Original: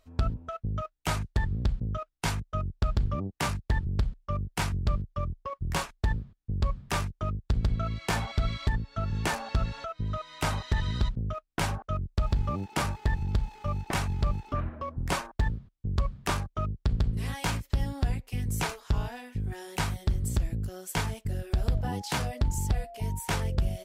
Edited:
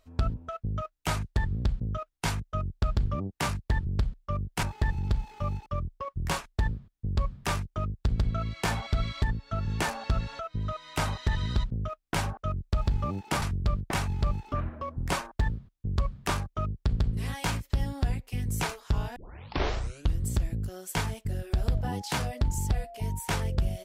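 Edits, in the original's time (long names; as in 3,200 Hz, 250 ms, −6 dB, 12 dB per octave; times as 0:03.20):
0:04.63–0:05.11: swap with 0:12.87–0:13.90
0:19.16: tape start 1.10 s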